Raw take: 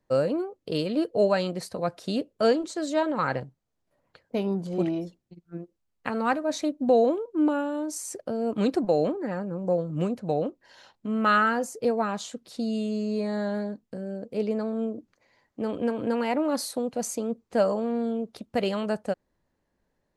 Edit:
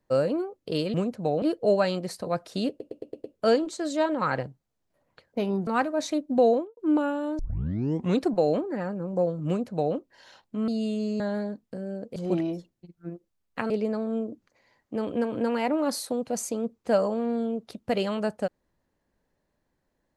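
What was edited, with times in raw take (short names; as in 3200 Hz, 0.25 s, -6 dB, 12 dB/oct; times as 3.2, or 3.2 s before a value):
2.21 stutter 0.11 s, 6 plays
4.64–6.18 move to 14.36
6.98–7.28 studio fade out
7.9 tape start 0.79 s
9.98–10.46 copy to 0.94
11.19–12.6 cut
13.12–13.4 cut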